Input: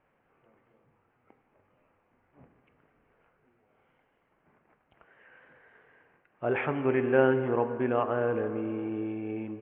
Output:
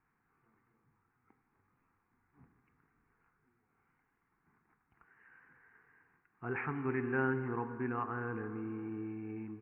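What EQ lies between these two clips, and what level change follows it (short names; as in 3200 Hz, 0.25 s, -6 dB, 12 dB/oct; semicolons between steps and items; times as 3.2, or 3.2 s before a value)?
fixed phaser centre 1400 Hz, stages 4; -4.0 dB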